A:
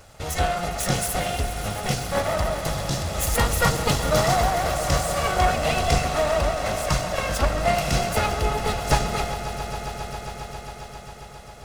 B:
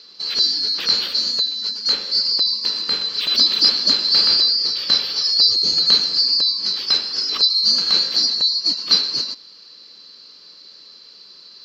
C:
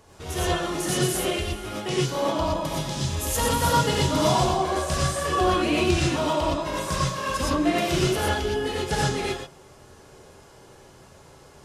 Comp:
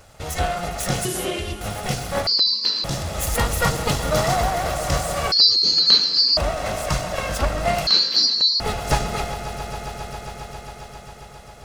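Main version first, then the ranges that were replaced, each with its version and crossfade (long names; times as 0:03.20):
A
0:01.05–0:01.61: punch in from C
0:02.27–0:02.84: punch in from B
0:05.32–0:06.37: punch in from B
0:07.87–0:08.60: punch in from B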